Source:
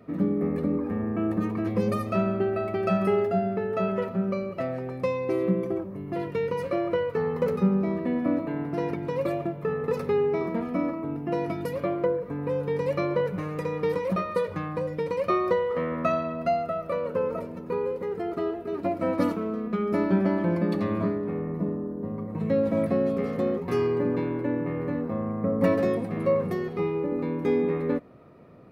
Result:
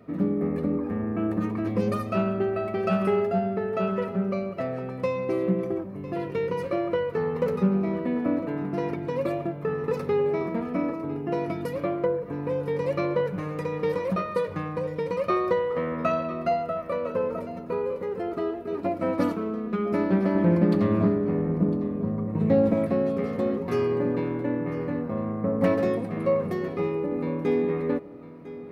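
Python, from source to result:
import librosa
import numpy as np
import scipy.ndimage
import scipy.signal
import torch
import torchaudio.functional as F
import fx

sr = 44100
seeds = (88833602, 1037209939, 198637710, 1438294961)

y = fx.low_shelf(x, sr, hz=500.0, db=6.0, at=(20.35, 22.74))
y = y + 10.0 ** (-16.0 / 20.0) * np.pad(y, (int(1003 * sr / 1000.0), 0))[:len(y)]
y = fx.doppler_dist(y, sr, depth_ms=0.15)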